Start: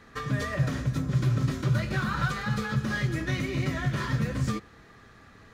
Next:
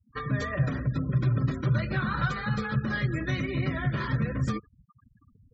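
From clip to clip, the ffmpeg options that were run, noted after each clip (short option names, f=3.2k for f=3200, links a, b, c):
-af "afftfilt=real='re*gte(hypot(re,im),0.0126)':imag='im*gte(hypot(re,im),0.0126)':win_size=1024:overlap=0.75"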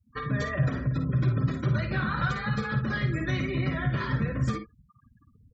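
-af "aecho=1:1:54|67:0.398|0.141"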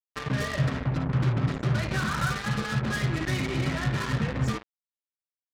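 -af "acrusher=bits=4:mix=0:aa=0.5"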